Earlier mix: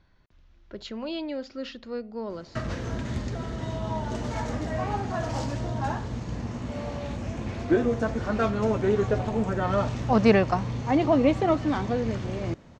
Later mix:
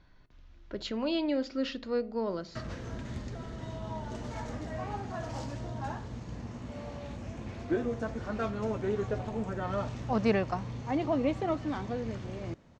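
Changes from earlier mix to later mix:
background -8.0 dB; reverb: on, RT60 0.40 s

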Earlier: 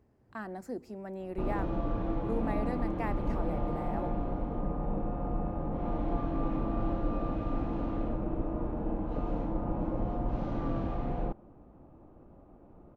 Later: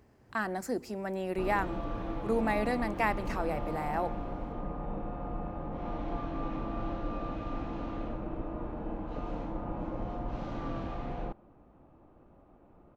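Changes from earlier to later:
speech +9.0 dB; master: add tilt shelf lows -5 dB, about 1.1 kHz

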